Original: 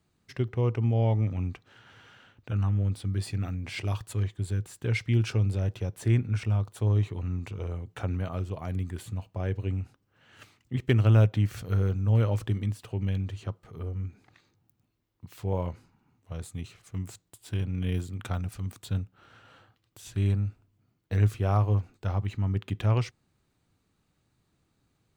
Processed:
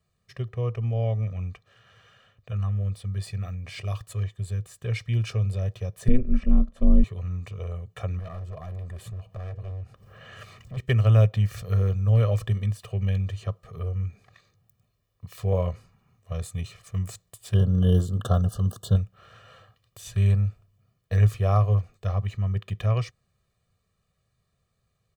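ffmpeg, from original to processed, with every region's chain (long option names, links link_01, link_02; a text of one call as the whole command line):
ffmpeg -i in.wav -filter_complex "[0:a]asettb=1/sr,asplit=3[link_01][link_02][link_03];[link_01]atrim=end=6.084[link_04];[link_02]atrim=start=6.08:end=7.04,asetpts=PTS-STARTPTS,afade=type=in:duration=0.004:curve=qsin,afade=type=out:start_time=0.956:duration=0.004:curve=qsin,aemphasis=mode=reproduction:type=riaa,aeval=exprs='val(0)*sin(2*PI*130*n/s)':channel_layout=same[link_05];[link_03]atrim=start=7.036[link_06];[link_04][link_05]acrossfade=duration=0.004:curve1=hsin:curve2=qsin[link_07];[link_07][link_06]acrossfade=duration=0.004:curve1=qsin:curve2=hsin,asettb=1/sr,asplit=3[link_08][link_09][link_10];[link_08]atrim=end=8.194[link_11];[link_09]atrim=start=8.19:end=10.77,asetpts=PTS-STARTPTS,afade=type=in:duration=0.004:curve=qsin,afade=type=out:start_time=2.576:duration=0.004:curve=qsin,highshelf=frequency=2500:gain=-8,acompressor=mode=upward:threshold=-32dB:ratio=2.5:attack=3.2:release=140:knee=2.83:detection=peak,asoftclip=type=hard:threshold=-33.5dB[link_12];[link_10]atrim=start=10.766[link_13];[link_11][link_12]acrossfade=duration=0.004:curve1=hsin:curve2=qsin[link_14];[link_14][link_13]acrossfade=duration=0.004:curve1=qsin:curve2=hsin,asettb=1/sr,asplit=3[link_15][link_16][link_17];[link_15]atrim=end=17.544[link_18];[link_16]atrim=start=17.54:end=18.96,asetpts=PTS-STARTPTS,afade=type=in:duration=0.004:curve=qsin,afade=type=out:start_time=1.416:duration=0.004:curve=qsin,asuperstop=centerf=2200:order=20:qfactor=2,equalizer=frequency=290:width=0.54:gain=9[link_19];[link_17]atrim=start=18.956[link_20];[link_18][link_19]acrossfade=duration=0.004:curve1=hsin:curve2=qsin[link_21];[link_21][link_20]acrossfade=duration=0.004:curve1=qsin:curve2=hsin,aecho=1:1:1.7:0.95,dynaudnorm=framelen=690:gausssize=13:maxgain=11.5dB,volume=-5dB" out.wav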